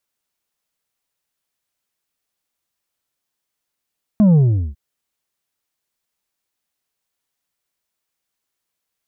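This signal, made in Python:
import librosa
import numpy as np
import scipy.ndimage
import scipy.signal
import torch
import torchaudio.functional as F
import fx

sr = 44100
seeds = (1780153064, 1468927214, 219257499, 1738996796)

y = fx.sub_drop(sr, level_db=-9.0, start_hz=220.0, length_s=0.55, drive_db=5.0, fade_s=0.4, end_hz=65.0)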